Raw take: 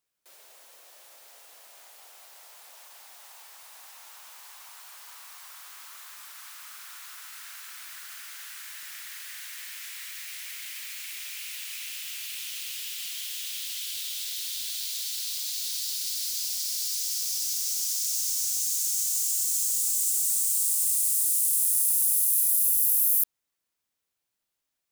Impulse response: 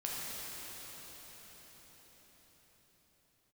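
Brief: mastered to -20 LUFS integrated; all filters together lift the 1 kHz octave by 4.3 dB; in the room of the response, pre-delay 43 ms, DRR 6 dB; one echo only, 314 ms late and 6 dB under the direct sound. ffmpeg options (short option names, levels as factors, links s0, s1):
-filter_complex "[0:a]equalizer=f=1000:t=o:g=5.5,aecho=1:1:314:0.501,asplit=2[s0][s1];[1:a]atrim=start_sample=2205,adelay=43[s2];[s1][s2]afir=irnorm=-1:irlink=0,volume=0.316[s3];[s0][s3]amix=inputs=2:normalize=0,volume=1.41"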